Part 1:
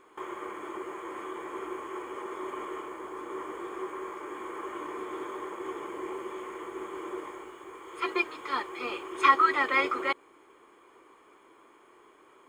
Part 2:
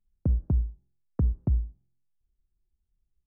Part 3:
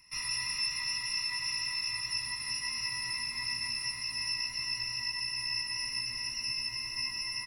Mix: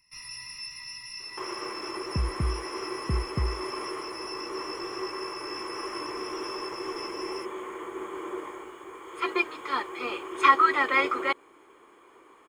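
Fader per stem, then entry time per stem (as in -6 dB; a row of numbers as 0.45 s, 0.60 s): +2.0 dB, -3.5 dB, -7.0 dB; 1.20 s, 1.90 s, 0.00 s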